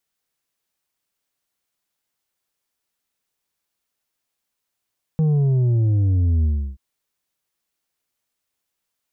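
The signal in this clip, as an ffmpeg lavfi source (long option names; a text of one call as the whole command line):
ffmpeg -f lavfi -i "aevalsrc='0.168*clip((1.58-t)/0.33,0,1)*tanh(1.88*sin(2*PI*160*1.58/log(65/160)*(exp(log(65/160)*t/1.58)-1)))/tanh(1.88)':duration=1.58:sample_rate=44100" out.wav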